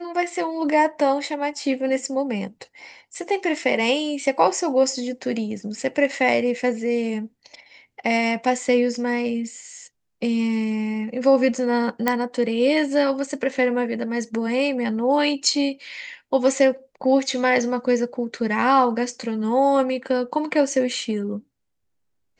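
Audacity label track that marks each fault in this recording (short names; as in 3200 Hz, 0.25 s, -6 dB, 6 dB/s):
12.080000	12.080000	pop -6 dBFS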